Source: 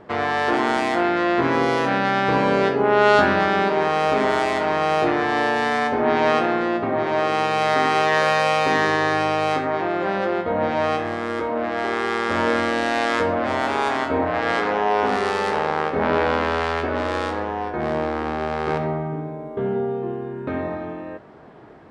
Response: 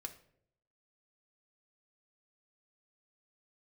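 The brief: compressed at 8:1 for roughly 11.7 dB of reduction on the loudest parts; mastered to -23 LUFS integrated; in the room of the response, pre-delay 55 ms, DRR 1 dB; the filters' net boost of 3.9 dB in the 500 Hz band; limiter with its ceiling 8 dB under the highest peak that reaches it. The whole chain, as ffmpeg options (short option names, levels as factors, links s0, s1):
-filter_complex "[0:a]equalizer=f=500:t=o:g=5,acompressor=threshold=0.1:ratio=8,alimiter=limit=0.133:level=0:latency=1,asplit=2[s0][s1];[1:a]atrim=start_sample=2205,adelay=55[s2];[s1][s2]afir=irnorm=-1:irlink=0,volume=1.33[s3];[s0][s3]amix=inputs=2:normalize=0,volume=1.33"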